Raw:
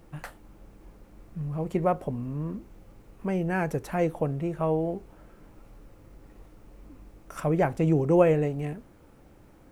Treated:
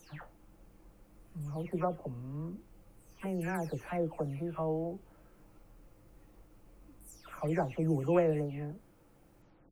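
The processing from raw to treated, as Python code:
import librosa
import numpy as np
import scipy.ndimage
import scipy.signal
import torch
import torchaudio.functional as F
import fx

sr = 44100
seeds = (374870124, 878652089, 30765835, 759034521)

y = fx.spec_delay(x, sr, highs='early', ms=294)
y = fx.high_shelf(y, sr, hz=6800.0, db=5.5)
y = F.gain(torch.from_numpy(y), -7.5).numpy()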